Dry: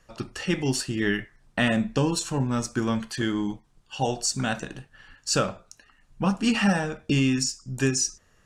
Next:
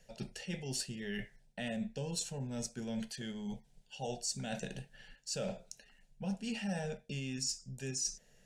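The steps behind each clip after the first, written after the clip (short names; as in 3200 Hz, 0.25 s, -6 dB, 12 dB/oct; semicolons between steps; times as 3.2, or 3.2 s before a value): reverse; compressor 6:1, threshold -33 dBFS, peak gain reduction 15.5 dB; reverse; fixed phaser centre 310 Hz, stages 6; gain -1 dB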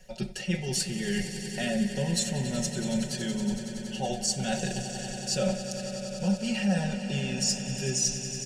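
comb 5.4 ms, depth 84%; on a send: swelling echo 93 ms, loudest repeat 5, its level -14 dB; on the sum: gain +6.5 dB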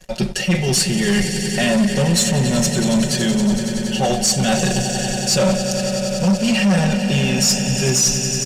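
sample leveller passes 3; downsampling 32000 Hz; gain +3.5 dB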